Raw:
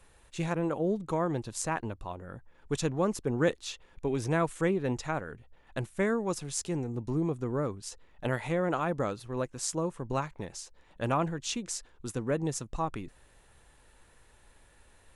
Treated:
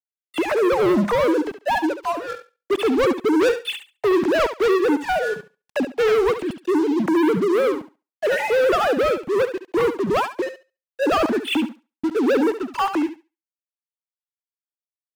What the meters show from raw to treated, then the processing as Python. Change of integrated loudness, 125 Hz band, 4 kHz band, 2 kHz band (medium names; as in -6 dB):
+11.5 dB, -4.0 dB, +12.0 dB, +13.0 dB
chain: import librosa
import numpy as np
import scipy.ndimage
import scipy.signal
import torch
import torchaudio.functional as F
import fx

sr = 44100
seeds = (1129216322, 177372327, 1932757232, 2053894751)

y = fx.sine_speech(x, sr)
y = fx.low_shelf(y, sr, hz=250.0, db=9.5)
y = fx.leveller(y, sr, passes=5)
y = np.where(np.abs(y) >= 10.0 ** (-45.5 / 20.0), y, 0.0)
y = fx.echo_thinned(y, sr, ms=70, feedback_pct=18, hz=270.0, wet_db=-10.0)
y = y * 10.0 ** (-2.5 / 20.0)